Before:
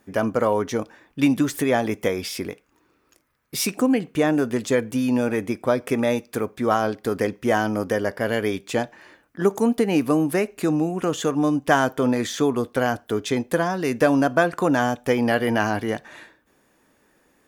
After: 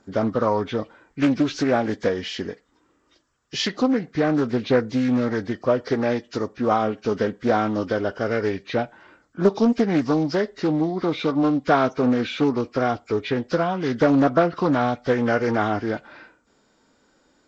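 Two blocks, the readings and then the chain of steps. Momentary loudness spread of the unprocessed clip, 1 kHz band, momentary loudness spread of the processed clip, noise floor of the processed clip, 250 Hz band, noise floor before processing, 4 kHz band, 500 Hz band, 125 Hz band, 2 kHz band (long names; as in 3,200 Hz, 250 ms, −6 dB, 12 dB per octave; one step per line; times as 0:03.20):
7 LU, +0.5 dB, 7 LU, −64 dBFS, +0.5 dB, −64 dBFS, +0.5 dB, 0.0 dB, +1.0 dB, −3.0 dB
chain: hearing-aid frequency compression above 1,100 Hz 1.5 to 1
phase shifter 0.21 Hz, delay 4.7 ms, feedback 21%
highs frequency-modulated by the lows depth 0.31 ms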